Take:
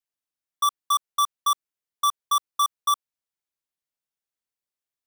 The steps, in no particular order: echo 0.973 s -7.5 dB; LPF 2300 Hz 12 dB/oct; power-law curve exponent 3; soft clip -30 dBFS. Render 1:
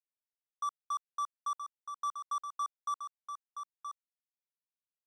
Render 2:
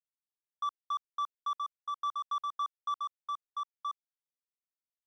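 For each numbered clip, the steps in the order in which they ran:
soft clip > LPF > power-law curve > echo; echo > soft clip > power-law curve > LPF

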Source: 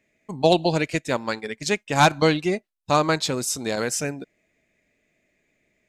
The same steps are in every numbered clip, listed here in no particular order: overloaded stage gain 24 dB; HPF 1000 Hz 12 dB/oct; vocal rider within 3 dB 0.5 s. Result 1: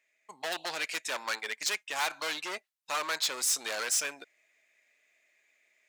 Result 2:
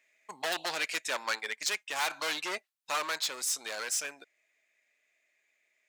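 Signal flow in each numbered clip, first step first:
vocal rider > overloaded stage > HPF; overloaded stage > HPF > vocal rider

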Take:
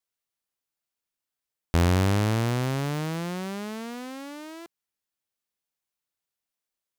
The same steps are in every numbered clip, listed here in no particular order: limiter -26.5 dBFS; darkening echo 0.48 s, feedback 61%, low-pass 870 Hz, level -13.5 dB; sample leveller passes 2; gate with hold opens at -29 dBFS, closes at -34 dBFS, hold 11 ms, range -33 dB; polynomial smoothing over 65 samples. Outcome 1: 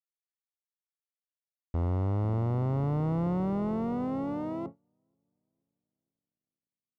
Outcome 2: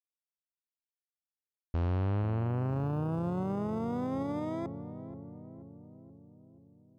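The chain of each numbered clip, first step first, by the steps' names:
limiter > darkening echo > sample leveller > polynomial smoothing > gate with hold; polynomial smoothing > sample leveller > gate with hold > darkening echo > limiter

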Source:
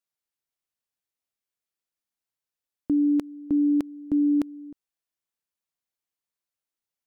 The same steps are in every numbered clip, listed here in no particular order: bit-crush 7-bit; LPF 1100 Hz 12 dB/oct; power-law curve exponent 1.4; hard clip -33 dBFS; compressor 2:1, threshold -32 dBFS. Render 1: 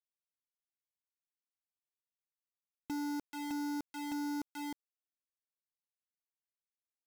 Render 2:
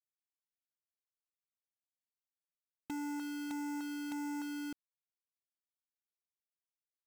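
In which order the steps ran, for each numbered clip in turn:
compressor > hard clip > power-law curve > LPF > bit-crush; hard clip > LPF > compressor > bit-crush > power-law curve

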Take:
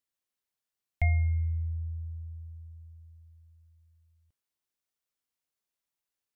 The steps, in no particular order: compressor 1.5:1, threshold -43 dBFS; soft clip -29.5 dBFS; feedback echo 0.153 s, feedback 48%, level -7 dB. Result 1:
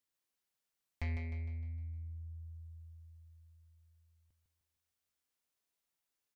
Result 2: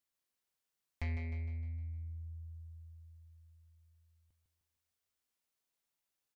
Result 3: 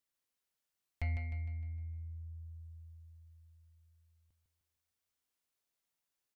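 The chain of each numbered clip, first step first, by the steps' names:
soft clip > compressor > feedback echo; soft clip > feedback echo > compressor; compressor > soft clip > feedback echo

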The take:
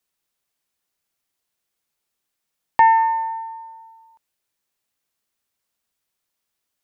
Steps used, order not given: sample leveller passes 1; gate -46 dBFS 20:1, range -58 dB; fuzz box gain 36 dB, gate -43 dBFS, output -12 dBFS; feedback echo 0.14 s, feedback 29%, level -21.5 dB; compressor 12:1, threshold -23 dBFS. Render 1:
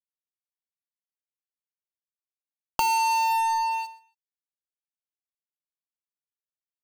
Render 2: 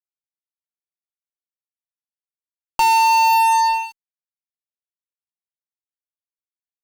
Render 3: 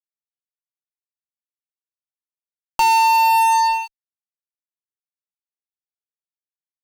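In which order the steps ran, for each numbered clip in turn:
gate > fuzz box > feedback echo > sample leveller > compressor; compressor > feedback echo > sample leveller > gate > fuzz box; gate > feedback echo > sample leveller > compressor > fuzz box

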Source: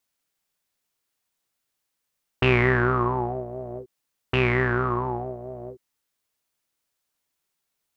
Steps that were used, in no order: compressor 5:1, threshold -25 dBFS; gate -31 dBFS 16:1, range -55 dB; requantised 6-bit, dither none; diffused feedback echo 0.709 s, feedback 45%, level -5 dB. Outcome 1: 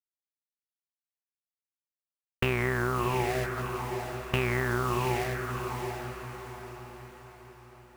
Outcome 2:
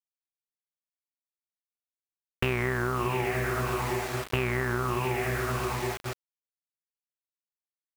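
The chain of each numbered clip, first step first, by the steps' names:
requantised > gate > compressor > diffused feedback echo; diffused feedback echo > gate > requantised > compressor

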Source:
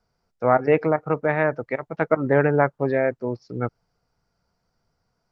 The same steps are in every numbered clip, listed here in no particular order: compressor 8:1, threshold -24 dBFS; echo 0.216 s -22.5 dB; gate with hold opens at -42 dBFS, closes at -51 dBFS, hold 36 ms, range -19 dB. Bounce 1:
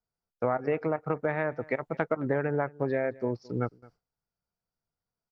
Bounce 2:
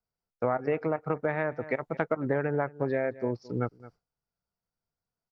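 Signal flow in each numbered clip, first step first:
compressor > echo > gate with hold; echo > gate with hold > compressor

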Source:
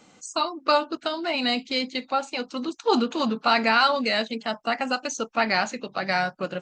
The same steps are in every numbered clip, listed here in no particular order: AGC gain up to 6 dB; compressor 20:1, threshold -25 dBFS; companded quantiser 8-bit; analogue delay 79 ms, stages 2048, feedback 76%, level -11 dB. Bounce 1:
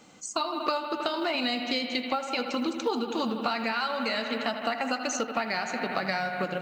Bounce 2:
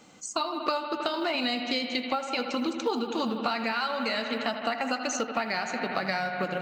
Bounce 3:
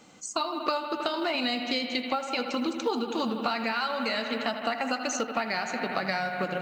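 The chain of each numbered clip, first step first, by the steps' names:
analogue delay > companded quantiser > AGC > compressor; companded quantiser > AGC > analogue delay > compressor; AGC > analogue delay > compressor > companded quantiser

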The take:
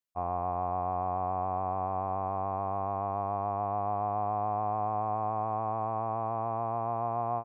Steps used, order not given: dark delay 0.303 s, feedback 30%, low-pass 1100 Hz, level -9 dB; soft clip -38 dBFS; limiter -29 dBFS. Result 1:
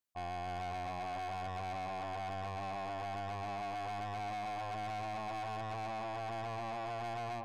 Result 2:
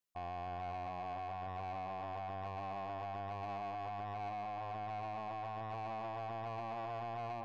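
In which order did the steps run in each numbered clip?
dark delay > soft clip > limiter; dark delay > limiter > soft clip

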